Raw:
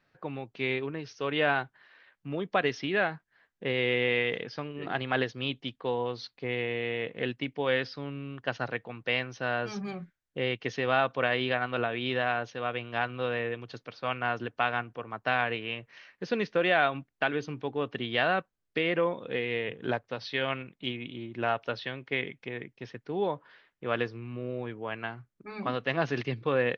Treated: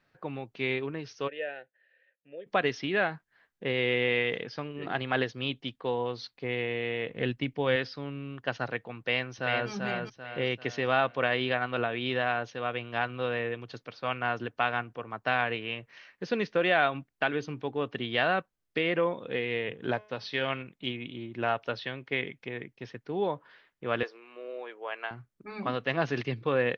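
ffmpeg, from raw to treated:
-filter_complex "[0:a]asplit=3[s0][s1][s2];[s0]afade=t=out:st=1.27:d=0.02[s3];[s1]asplit=3[s4][s5][s6];[s4]bandpass=f=530:t=q:w=8,volume=1[s7];[s5]bandpass=f=1840:t=q:w=8,volume=0.501[s8];[s6]bandpass=f=2480:t=q:w=8,volume=0.355[s9];[s7][s8][s9]amix=inputs=3:normalize=0,afade=t=in:st=1.27:d=0.02,afade=t=out:st=2.46:d=0.02[s10];[s2]afade=t=in:st=2.46:d=0.02[s11];[s3][s10][s11]amix=inputs=3:normalize=0,asettb=1/sr,asplit=3[s12][s13][s14];[s12]atrim=end=7.104[s15];[s13]atrim=start=7.1:end=7.76,asetpts=PTS-STARTPTS,afade=t=in:d=0.004:c=qsin,afade=t=out:st=0.656:d=0.004:c=qsin,lowshelf=f=140:g=10.5[s16];[s14]atrim=start=7.756[s17];[s15][s16]acrossfade=d=0.004:c1=hsin:c2=qsin[s18];[s18][s17]acrossfade=d=0.004:c1=qsin:c2=hsin,asplit=2[s19][s20];[s20]afade=t=in:st=8.99:d=0.01,afade=t=out:st=9.7:d=0.01,aecho=0:1:390|780|1170|1560|1950:0.630957|0.252383|0.100953|0.0403813|0.0161525[s21];[s19][s21]amix=inputs=2:normalize=0,asplit=3[s22][s23][s24];[s22]afade=t=out:st=19.95:d=0.02[s25];[s23]bandreject=f=212:t=h:w=4,bandreject=f=424:t=h:w=4,bandreject=f=636:t=h:w=4,bandreject=f=848:t=h:w=4,bandreject=f=1060:t=h:w=4,bandreject=f=1272:t=h:w=4,bandreject=f=1484:t=h:w=4,bandreject=f=1696:t=h:w=4,bandreject=f=1908:t=h:w=4,bandreject=f=2120:t=h:w=4,bandreject=f=2332:t=h:w=4,bandreject=f=2544:t=h:w=4,bandreject=f=2756:t=h:w=4,bandreject=f=2968:t=h:w=4,bandreject=f=3180:t=h:w=4,bandreject=f=3392:t=h:w=4,bandreject=f=3604:t=h:w=4,bandreject=f=3816:t=h:w=4,bandreject=f=4028:t=h:w=4,bandreject=f=4240:t=h:w=4,bandreject=f=4452:t=h:w=4,bandreject=f=4664:t=h:w=4,bandreject=f=4876:t=h:w=4,bandreject=f=5088:t=h:w=4,bandreject=f=5300:t=h:w=4,bandreject=f=5512:t=h:w=4,bandreject=f=5724:t=h:w=4,bandreject=f=5936:t=h:w=4,bandreject=f=6148:t=h:w=4,bandreject=f=6360:t=h:w=4,afade=t=in:st=19.95:d=0.02,afade=t=out:st=20.61:d=0.02[s26];[s24]afade=t=in:st=20.61:d=0.02[s27];[s25][s26][s27]amix=inputs=3:normalize=0,asettb=1/sr,asplit=3[s28][s29][s30];[s28]atrim=end=24.034[s31];[s29]atrim=start=24.03:end=25.11,asetpts=PTS-STARTPTS,afade=t=in:d=0.004:c=qsin,afade=t=out:st=1.076:d=0.004:c=qsin,highpass=f=440:w=0.5412,highpass=f=440:w=1.3066[s32];[s30]atrim=start=25.106[s33];[s31][s32]acrossfade=d=0.004:c1=hsin:c2=qsin[s34];[s34][s33]acrossfade=d=0.004:c1=qsin:c2=hsin"

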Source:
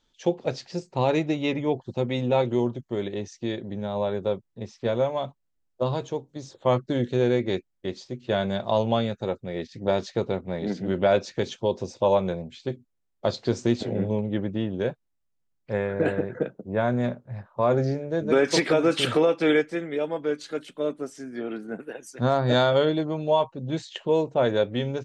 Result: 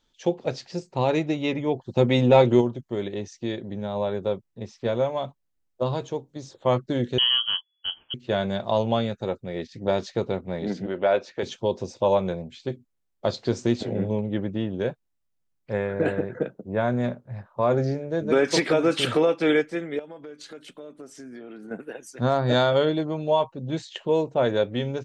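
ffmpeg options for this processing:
-filter_complex "[0:a]asplit=3[s0][s1][s2];[s0]afade=t=out:st=1.95:d=0.02[s3];[s1]acontrast=81,afade=t=in:st=1.95:d=0.02,afade=t=out:st=2.6:d=0.02[s4];[s2]afade=t=in:st=2.6:d=0.02[s5];[s3][s4][s5]amix=inputs=3:normalize=0,asettb=1/sr,asplit=3[s6][s7][s8];[s6]atrim=end=7.184[s9];[s7]atrim=start=7.18:end=8.14,asetpts=PTS-STARTPTS,afade=t=in:d=0.004:c=qsin,afade=t=out:st=0.956:d=0.004:c=qsin,lowpass=f=2900:t=q:w=0.5098,lowpass=f=2900:t=q:w=0.6013,lowpass=f=2900:t=q:w=0.9,lowpass=f=2900:t=q:w=2.563,afreqshift=-3400[s10];[s8]atrim=start=8.136[s11];[s9][s10]acrossfade=d=0.004:c1=hsin:c2=qsin[s12];[s12][s11]acrossfade=d=0.004:c1=qsin:c2=hsin,asettb=1/sr,asplit=3[s13][s14][s15];[s13]atrim=end=10.864[s16];[s14]atrim=start=10.86:end=11.43,asetpts=PTS-STARTPTS,afade=t=in:d=0.004:c=qsin,afade=t=out:st=0.566:d=0.004:c=qsin,bass=f=250:g=-13,treble=f=4000:g=-11[s17];[s15]atrim=start=11.426[s18];[s16][s17]acrossfade=d=0.004:c1=hsin:c2=qsin[s19];[s19][s18]acrossfade=d=0.004:c1=qsin:c2=hsin,asettb=1/sr,asplit=3[s20][s21][s22];[s20]atrim=end=19.994[s23];[s21]atrim=start=19.99:end=21.71,asetpts=PTS-STARTPTS,afade=t=in:d=0.004:c=qsin,afade=t=out:st=1.716:d=0.004:c=qsin,acompressor=threshold=0.0141:ratio=8:attack=3.2:release=140:knee=1:detection=peak[s24];[s22]atrim=start=21.706[s25];[s23][s24]acrossfade=d=0.004:c1=hsin:c2=qsin[s26];[s26][s25]acrossfade=d=0.004:c1=qsin:c2=hsin"

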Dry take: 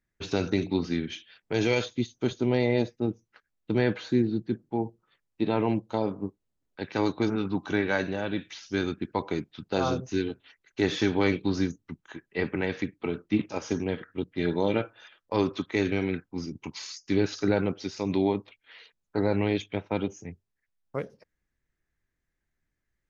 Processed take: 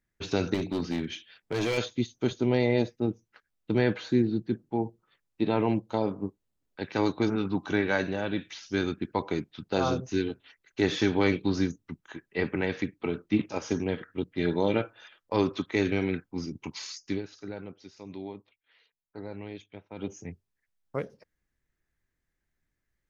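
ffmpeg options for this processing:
-filter_complex "[0:a]asettb=1/sr,asplit=3[s0][s1][s2];[s0]atrim=end=0.544[s3];[s1]atrim=start=0.54:end=1.78,asetpts=PTS-STARTPTS,afade=t=in:d=0.004:c=qsin,afade=t=out:st=1.236:d=0.004:c=qsin,asoftclip=type=hard:threshold=0.0631[s4];[s2]atrim=start=1.776[s5];[s3][s4]acrossfade=d=0.004:c1=hsin:c2=qsin[s6];[s6][s5]acrossfade=d=0.004:c1=qsin:c2=hsin,asplit=3[s7][s8][s9];[s7]atrim=end=17.22,asetpts=PTS-STARTPTS,afade=t=out:st=17.04:d=0.18:silence=0.188365[s10];[s8]atrim=start=17.22:end=19.96,asetpts=PTS-STARTPTS,volume=0.188[s11];[s9]atrim=start=19.96,asetpts=PTS-STARTPTS,afade=t=in:d=0.18:silence=0.188365[s12];[s10][s11][s12]concat=n=3:v=0:a=1"

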